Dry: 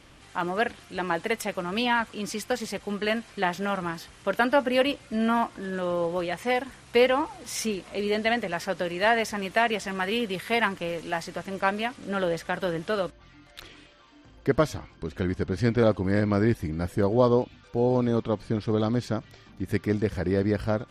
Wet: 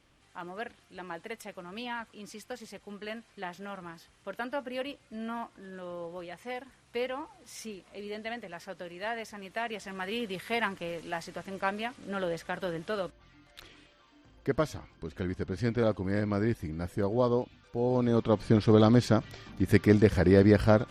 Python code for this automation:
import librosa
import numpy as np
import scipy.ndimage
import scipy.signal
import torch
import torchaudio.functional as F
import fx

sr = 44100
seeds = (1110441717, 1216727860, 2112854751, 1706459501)

y = fx.gain(x, sr, db=fx.line((9.4, -13.0), (10.29, -6.0), (17.8, -6.0), (18.51, 4.0)))